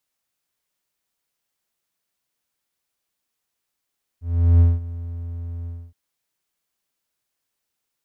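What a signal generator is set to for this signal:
note with an ADSR envelope triangle 85.2 Hz, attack 392 ms, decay 193 ms, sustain −18.5 dB, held 1.46 s, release 261 ms −7 dBFS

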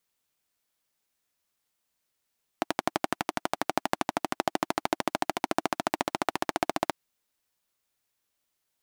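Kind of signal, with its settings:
pulse-train model of a single-cylinder engine, changing speed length 4.29 s, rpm 1,400, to 1,800, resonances 320/700 Hz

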